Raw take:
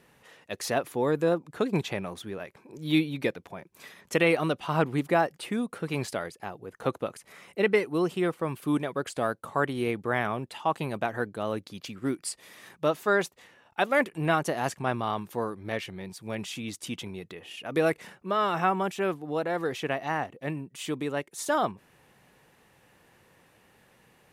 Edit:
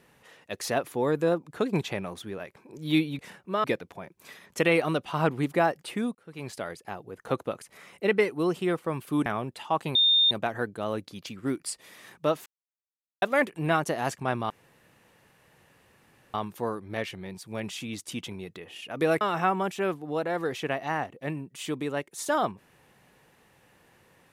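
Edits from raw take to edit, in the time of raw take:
0:05.70–0:06.36: fade in
0:08.81–0:10.21: remove
0:10.90: insert tone 3,640 Hz −17.5 dBFS 0.36 s
0:13.05–0:13.81: silence
0:15.09: splice in room tone 1.84 s
0:17.96–0:18.41: move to 0:03.19

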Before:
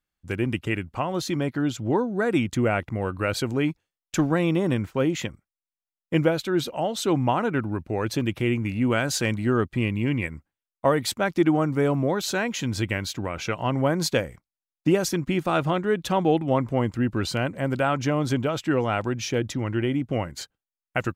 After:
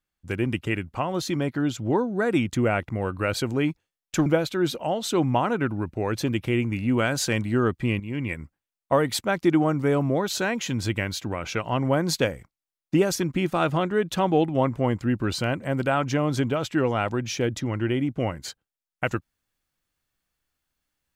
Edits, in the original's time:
0:04.26–0:06.19: remove
0:09.93–0:10.33: fade in, from −12 dB

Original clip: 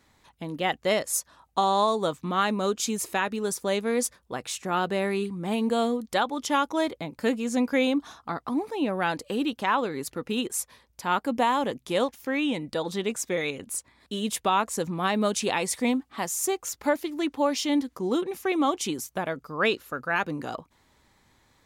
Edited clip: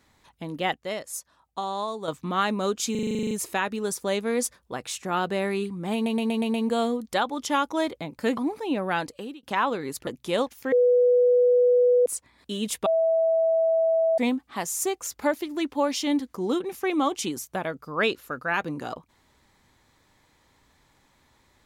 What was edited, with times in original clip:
0:00.74–0:02.08: clip gain −7.5 dB
0:02.91: stutter 0.04 s, 11 plays
0:05.54: stutter 0.12 s, 6 plays
0:07.37–0:08.48: remove
0:09.09–0:09.54: fade out
0:10.18–0:11.69: remove
0:12.34–0:13.68: beep over 492 Hz −15.5 dBFS
0:14.48–0:15.80: beep over 653 Hz −18.5 dBFS

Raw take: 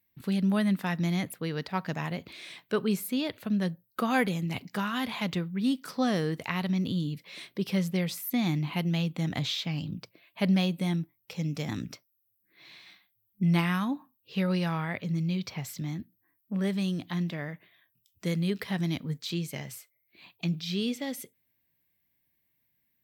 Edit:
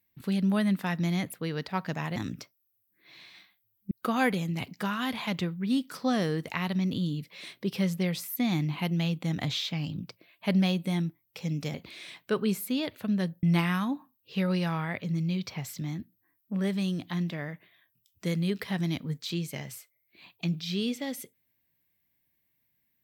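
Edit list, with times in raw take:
0:02.16–0:03.85: swap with 0:11.68–0:13.43

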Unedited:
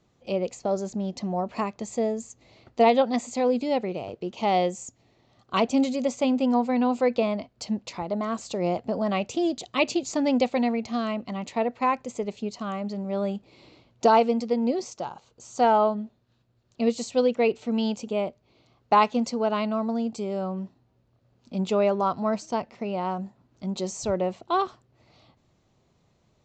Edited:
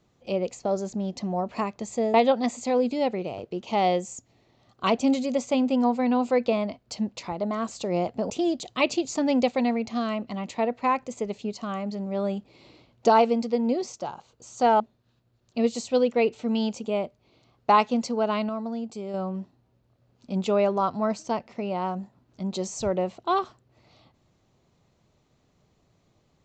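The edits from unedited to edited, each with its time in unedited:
0:02.14–0:02.84: remove
0:09.00–0:09.28: remove
0:15.78–0:16.03: remove
0:19.72–0:20.37: clip gain −4.5 dB

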